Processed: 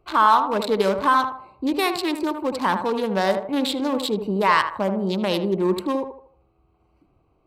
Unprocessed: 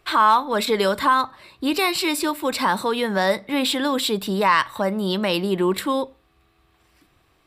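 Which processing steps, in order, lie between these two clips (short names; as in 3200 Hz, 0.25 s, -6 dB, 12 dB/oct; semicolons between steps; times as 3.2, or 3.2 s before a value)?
Wiener smoothing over 25 samples; on a send: narrowing echo 78 ms, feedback 42%, band-pass 700 Hz, level -6 dB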